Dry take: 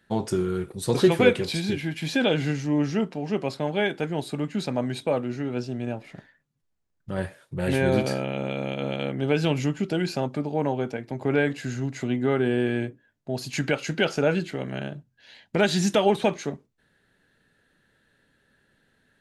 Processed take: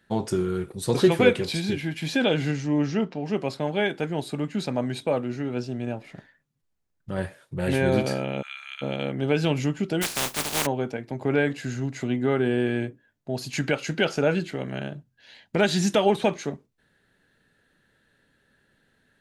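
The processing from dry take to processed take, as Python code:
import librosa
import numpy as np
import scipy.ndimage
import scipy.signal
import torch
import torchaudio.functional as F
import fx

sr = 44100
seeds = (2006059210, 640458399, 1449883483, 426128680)

y = fx.lowpass(x, sr, hz=fx.line((2.51, 9600.0), (3.24, 5500.0)), slope=24, at=(2.51, 3.24), fade=0.02)
y = fx.steep_highpass(y, sr, hz=1300.0, slope=36, at=(8.41, 8.81), fade=0.02)
y = fx.spec_flatten(y, sr, power=0.19, at=(10.01, 10.65), fade=0.02)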